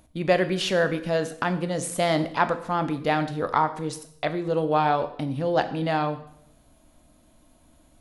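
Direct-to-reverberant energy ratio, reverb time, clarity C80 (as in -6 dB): 9.5 dB, 0.70 s, 15.5 dB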